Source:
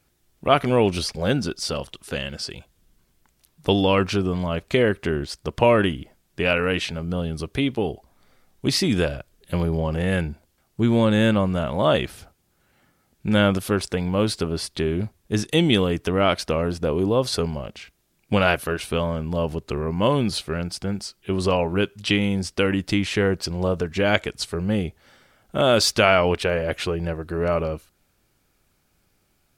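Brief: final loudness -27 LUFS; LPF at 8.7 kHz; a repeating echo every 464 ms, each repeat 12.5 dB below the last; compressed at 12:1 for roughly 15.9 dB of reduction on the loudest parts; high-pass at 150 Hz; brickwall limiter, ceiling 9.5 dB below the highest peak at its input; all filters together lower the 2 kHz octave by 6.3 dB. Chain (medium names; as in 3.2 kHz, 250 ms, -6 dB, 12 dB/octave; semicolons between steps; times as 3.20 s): high-pass 150 Hz; low-pass 8.7 kHz; peaking EQ 2 kHz -9 dB; compression 12:1, threshold -30 dBFS; peak limiter -24.5 dBFS; feedback delay 464 ms, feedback 24%, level -12.5 dB; trim +10 dB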